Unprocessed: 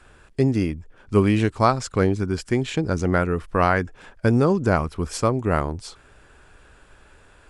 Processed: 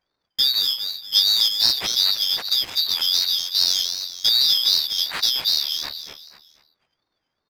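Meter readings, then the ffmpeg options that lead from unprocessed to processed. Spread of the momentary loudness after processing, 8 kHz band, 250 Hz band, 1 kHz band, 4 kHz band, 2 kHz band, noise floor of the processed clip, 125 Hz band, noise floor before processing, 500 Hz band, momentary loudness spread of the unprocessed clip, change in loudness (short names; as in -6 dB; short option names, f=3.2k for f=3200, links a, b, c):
9 LU, +10.5 dB, under -25 dB, -16.0 dB, +24.5 dB, -7.0 dB, -79 dBFS, under -25 dB, -53 dBFS, under -20 dB, 10 LU, +4.0 dB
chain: -filter_complex "[0:a]afftfilt=real='real(if(lt(b,736),b+184*(1-2*mod(floor(b/184),2)),b),0)':imag='imag(if(lt(b,736),b+184*(1-2*mod(floor(b/184),2)),b),0)':win_size=2048:overlap=0.75,equalizer=f=1.7k:t=o:w=2.7:g=14,adynamicsmooth=sensitivity=3.5:basefreq=550,asplit=2[a][b];[b]asplit=4[c][d][e][f];[c]adelay=242,afreqshift=42,volume=-7dB[g];[d]adelay=484,afreqshift=84,volume=-16.4dB[h];[e]adelay=726,afreqshift=126,volume=-25.7dB[i];[f]adelay=968,afreqshift=168,volume=-35.1dB[j];[g][h][i][j]amix=inputs=4:normalize=0[k];[a][k]amix=inputs=2:normalize=0,aeval=exprs='val(0)*sin(2*PI*610*n/s+610*0.5/2.6*sin(2*PI*2.6*n/s))':c=same,volume=-4.5dB"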